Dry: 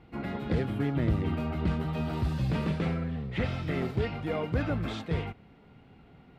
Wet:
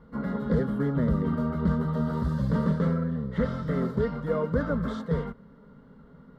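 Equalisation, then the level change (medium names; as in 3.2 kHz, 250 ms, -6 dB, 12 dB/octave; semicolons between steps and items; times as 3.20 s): treble shelf 2.7 kHz -10.5 dB; static phaser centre 500 Hz, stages 8; +7.0 dB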